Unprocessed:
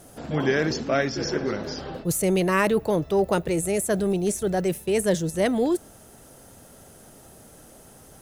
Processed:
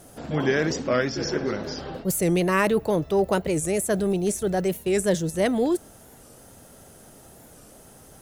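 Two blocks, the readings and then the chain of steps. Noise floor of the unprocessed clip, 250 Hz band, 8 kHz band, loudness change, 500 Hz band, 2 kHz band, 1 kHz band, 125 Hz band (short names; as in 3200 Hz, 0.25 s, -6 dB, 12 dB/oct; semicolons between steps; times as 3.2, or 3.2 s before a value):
-50 dBFS, 0.0 dB, 0.0 dB, 0.0 dB, 0.0 dB, 0.0 dB, 0.0 dB, 0.0 dB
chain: record warp 45 rpm, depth 160 cents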